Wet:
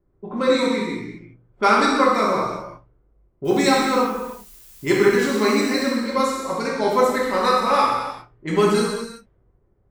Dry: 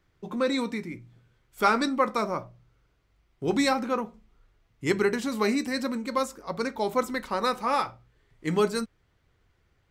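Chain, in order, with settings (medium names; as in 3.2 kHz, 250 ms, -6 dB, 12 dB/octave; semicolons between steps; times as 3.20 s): level-controlled noise filter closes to 560 Hz, open at -24.5 dBFS; 3.44–5.81 s: added noise blue -55 dBFS; gated-style reverb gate 420 ms falling, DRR -5 dB; trim +2 dB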